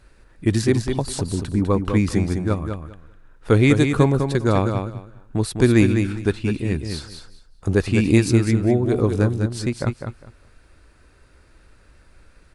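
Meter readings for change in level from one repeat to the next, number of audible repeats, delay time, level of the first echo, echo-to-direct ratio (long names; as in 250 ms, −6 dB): −14.5 dB, 2, 202 ms, −6.5 dB, −6.5 dB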